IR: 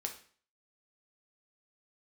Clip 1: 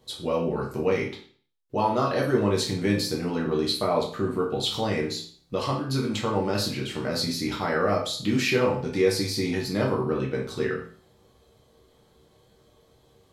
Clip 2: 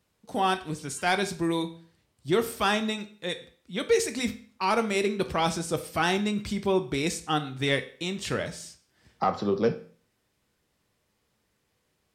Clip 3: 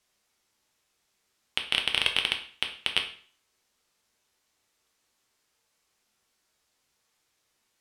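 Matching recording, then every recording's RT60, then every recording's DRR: 3; 0.45, 0.45, 0.45 seconds; −3.0, 7.5, 3.0 decibels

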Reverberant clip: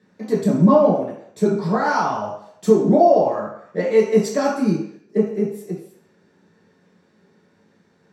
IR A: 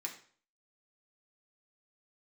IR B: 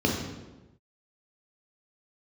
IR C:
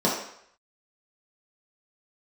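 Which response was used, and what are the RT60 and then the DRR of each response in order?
C; 0.50 s, non-exponential decay, 0.70 s; −1.0, −1.5, −6.0 decibels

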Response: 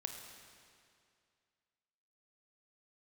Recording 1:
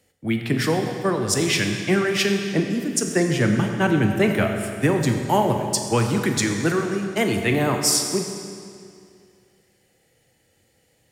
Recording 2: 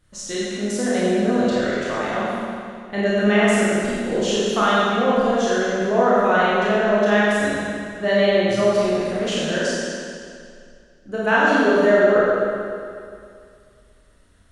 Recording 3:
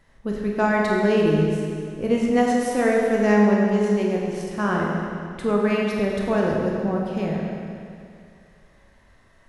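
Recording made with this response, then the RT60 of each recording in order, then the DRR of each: 1; 2.3, 2.3, 2.3 seconds; 3.5, −8.5, −2.0 decibels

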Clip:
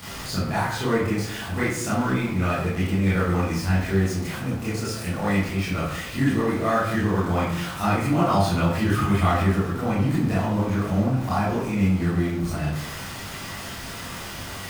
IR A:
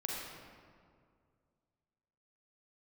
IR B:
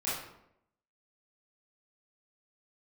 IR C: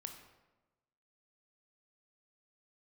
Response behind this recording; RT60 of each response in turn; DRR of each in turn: B; 2.1, 0.80, 1.1 seconds; −3.0, −10.5, 4.5 decibels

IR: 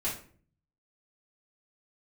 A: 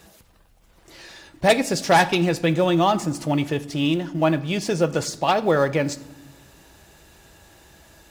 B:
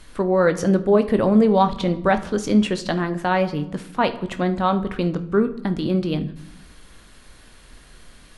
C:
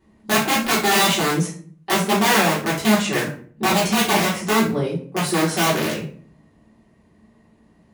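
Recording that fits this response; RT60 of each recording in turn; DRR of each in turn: C; non-exponential decay, 0.95 s, 0.50 s; 12.0, 9.0, −9.0 decibels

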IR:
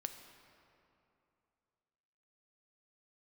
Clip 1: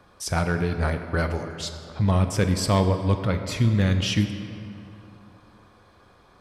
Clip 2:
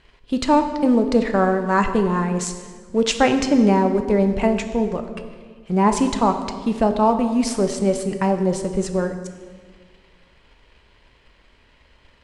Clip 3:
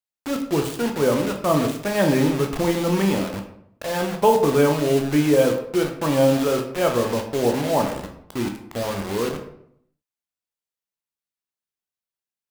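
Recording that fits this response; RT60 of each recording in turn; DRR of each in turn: 1; 2.8, 1.7, 0.70 seconds; 6.5, 6.0, 3.0 decibels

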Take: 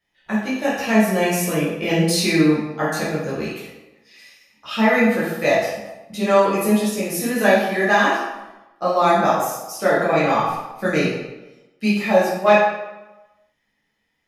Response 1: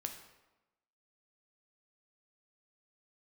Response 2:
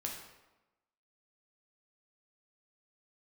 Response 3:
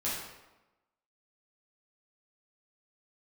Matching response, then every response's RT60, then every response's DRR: 3; 1.0, 1.0, 1.0 seconds; 4.5, −0.5, −9.0 decibels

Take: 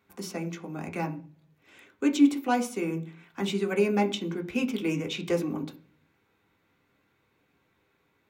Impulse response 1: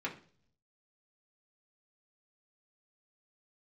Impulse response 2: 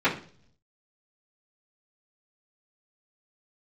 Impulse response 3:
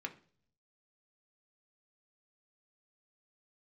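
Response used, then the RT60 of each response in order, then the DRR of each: 3; 0.45, 0.45, 0.50 seconds; −4.0, −13.5, 3.5 decibels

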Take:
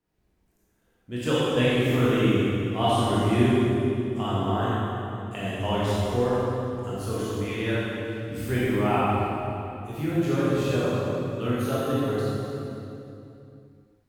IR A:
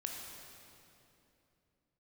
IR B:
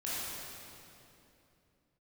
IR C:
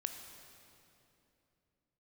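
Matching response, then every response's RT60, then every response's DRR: B; 2.9, 2.9, 2.9 seconds; 0.0, −9.5, 5.5 decibels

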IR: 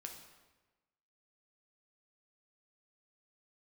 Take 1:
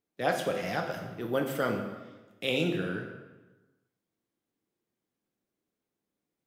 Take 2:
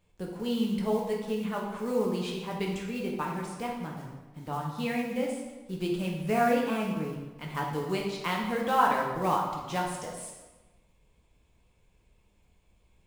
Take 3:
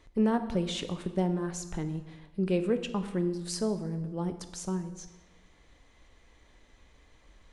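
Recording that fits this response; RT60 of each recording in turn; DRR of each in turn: 1; 1.2, 1.2, 1.2 seconds; 2.5, −2.0, 8.5 decibels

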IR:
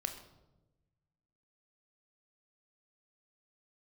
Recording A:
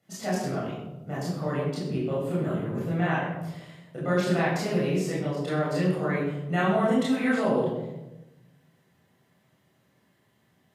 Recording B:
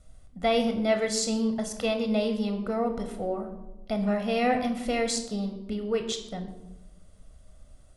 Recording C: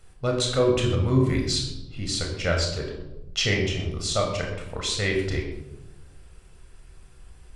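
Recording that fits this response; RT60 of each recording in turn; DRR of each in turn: B; 1.0, 1.0, 1.0 seconds; −8.5, 5.5, 0.0 decibels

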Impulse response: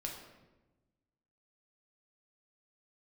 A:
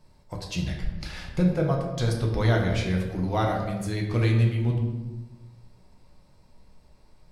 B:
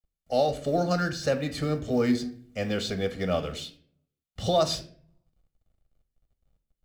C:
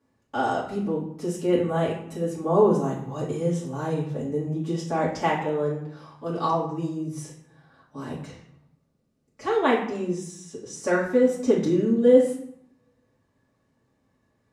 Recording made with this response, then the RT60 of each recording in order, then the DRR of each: A; 1.1, 0.50, 0.70 seconds; 0.0, 7.5, −8.5 decibels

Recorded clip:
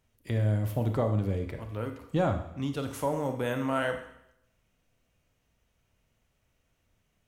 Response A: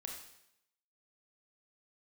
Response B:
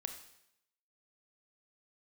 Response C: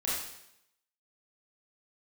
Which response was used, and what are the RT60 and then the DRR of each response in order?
B; 0.80, 0.80, 0.80 seconds; 0.0, 5.5, −8.0 decibels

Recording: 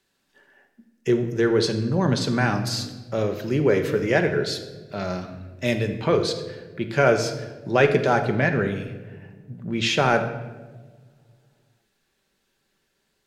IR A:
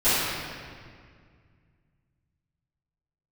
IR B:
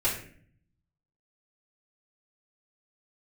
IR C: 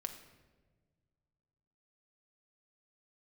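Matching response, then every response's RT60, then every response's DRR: C; 2.0, 0.50, 1.4 seconds; −18.5, −9.5, 5.0 decibels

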